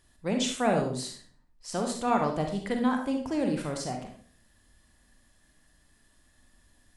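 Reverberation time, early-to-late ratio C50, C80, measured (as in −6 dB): 0.50 s, 4.5 dB, 9.5 dB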